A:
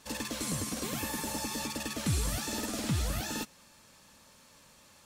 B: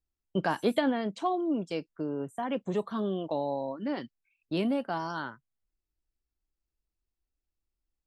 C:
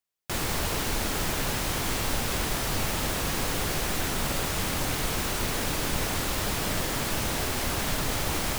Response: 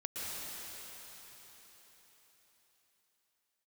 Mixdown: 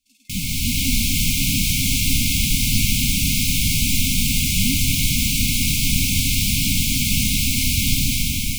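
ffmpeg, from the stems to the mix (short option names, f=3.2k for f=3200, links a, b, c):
-filter_complex "[0:a]highpass=f=260:w=0.5412,highpass=f=260:w=1.3066,volume=-19.5dB,asplit=2[a][b];[b]volume=-8dB[c];[1:a]volume=1dB[d];[2:a]dynaudnorm=f=170:g=7:m=7dB,volume=1dB,asplit=2[e][f];[f]volume=-6.5dB[g];[3:a]atrim=start_sample=2205[h];[c][g]amix=inputs=2:normalize=0[i];[i][h]afir=irnorm=-1:irlink=0[j];[a][d][e][j]amix=inputs=4:normalize=0,afftfilt=real='re*(1-between(b*sr/4096,290,2100))':imag='im*(1-between(b*sr/4096,290,2100))':win_size=4096:overlap=0.75"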